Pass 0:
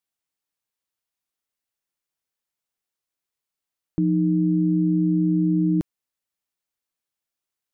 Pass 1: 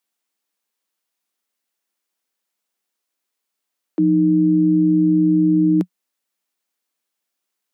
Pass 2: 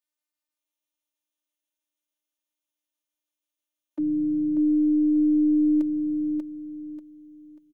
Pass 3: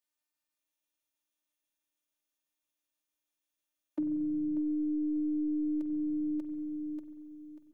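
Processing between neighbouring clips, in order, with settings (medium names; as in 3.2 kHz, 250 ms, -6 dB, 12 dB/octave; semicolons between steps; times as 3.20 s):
steep high-pass 180 Hz 96 dB/octave; trim +7 dB
robot voice 302 Hz; on a send: feedback delay 589 ms, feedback 30%, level -4 dB; on the sum: trim -8.5 dB
compression 6:1, threshold -30 dBFS, peak gain reduction 10.5 dB; on a send at -9 dB: reverberation RT60 1.4 s, pre-delay 45 ms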